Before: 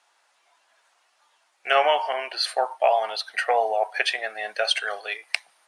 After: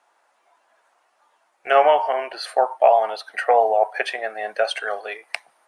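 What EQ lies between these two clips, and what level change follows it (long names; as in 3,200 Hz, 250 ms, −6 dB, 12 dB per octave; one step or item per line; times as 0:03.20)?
parametric band 3,900 Hz −12.5 dB 2.6 octaves
high-shelf EQ 6,100 Hz −7 dB
+7.5 dB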